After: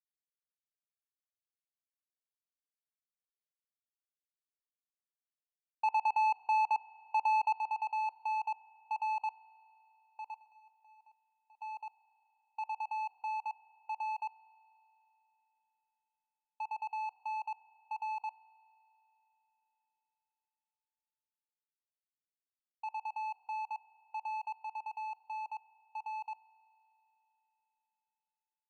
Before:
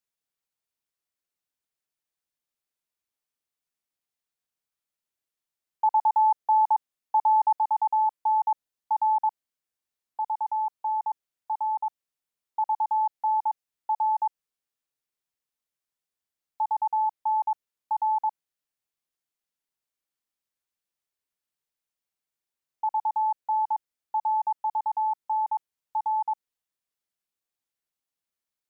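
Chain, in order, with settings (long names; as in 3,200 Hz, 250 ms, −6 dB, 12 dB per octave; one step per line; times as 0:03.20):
0:10.34–0:11.62: tuned comb filter 750 Hz, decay 0.17 s, mix 70%
power curve on the samples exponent 2
spring reverb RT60 3.7 s, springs 35 ms, chirp 55 ms, DRR 16 dB
level −7 dB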